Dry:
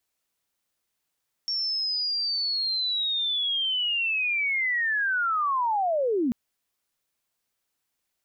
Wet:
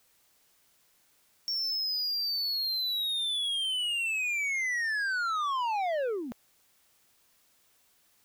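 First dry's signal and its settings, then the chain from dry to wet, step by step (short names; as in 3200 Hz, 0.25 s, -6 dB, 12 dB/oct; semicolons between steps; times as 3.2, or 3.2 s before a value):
chirp linear 5500 Hz -> 220 Hz -25 dBFS -> -21.5 dBFS 4.84 s
resonant low shelf 400 Hz -10.5 dB, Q 1.5; soft clip -28.5 dBFS; added noise white -67 dBFS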